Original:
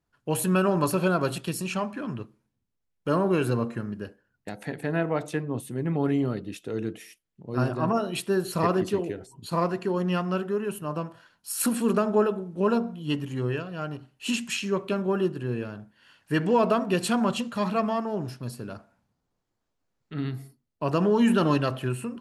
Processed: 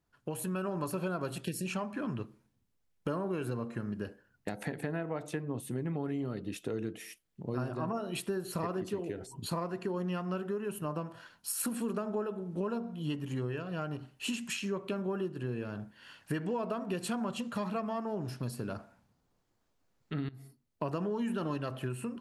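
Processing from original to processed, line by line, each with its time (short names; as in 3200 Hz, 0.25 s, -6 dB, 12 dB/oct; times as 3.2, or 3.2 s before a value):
1.44–1.67 spectral delete 640–1500 Hz
20.29–20.85 fade in, from -18.5 dB
whole clip: compressor 6:1, threshold -36 dBFS; dynamic EQ 4200 Hz, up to -3 dB, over -53 dBFS, Q 0.7; AGC gain up to 3.5 dB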